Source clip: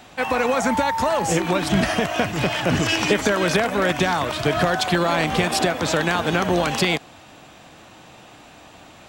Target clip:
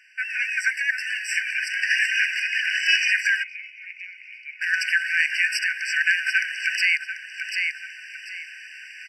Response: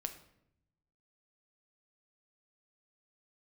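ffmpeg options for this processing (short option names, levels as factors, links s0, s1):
-filter_complex "[0:a]highpass=52,aemphasis=mode=reproduction:type=75kf,aecho=1:1:740|1480|2220:0.299|0.0687|0.0158,asettb=1/sr,asplit=3[s0][s1][s2];[s0]atrim=end=1.904[s3];[s1]atrim=start=1.9:end=2.4,asetpts=PTS-STARTPTS,afade=t=in:d=0.004:c=qsin,afade=t=out:st=0.496:d=0.004:c=qsin,acontrast=38[s4];[s2]atrim=start=2.396[s5];[s3][s4]acrossfade=d=0.004:c1=hsin:c2=qsin[s6];[s6][s5]acrossfade=d=0.004:c1=qsin:c2=hsin,bandreject=f=4300:w=9.2,dynaudnorm=f=230:g=3:m=4.47,asplit=3[s7][s8][s9];[s7]afade=t=out:st=3.42:d=0.02[s10];[s8]asplit=3[s11][s12][s13];[s11]bandpass=f=300:t=q:w=8,volume=1[s14];[s12]bandpass=f=870:t=q:w=8,volume=0.501[s15];[s13]bandpass=f=2240:t=q:w=8,volume=0.355[s16];[s14][s15][s16]amix=inputs=3:normalize=0,afade=t=in:st=3.42:d=0.02,afade=t=out:st=4.61:d=0.02[s17];[s9]afade=t=in:st=4.61:d=0.02[s18];[s10][s17][s18]amix=inputs=3:normalize=0,afftfilt=real='re*eq(mod(floor(b*sr/1024/1500),2),1)':imag='im*eq(mod(floor(b*sr/1024/1500),2),1)':win_size=1024:overlap=0.75,volume=1.26"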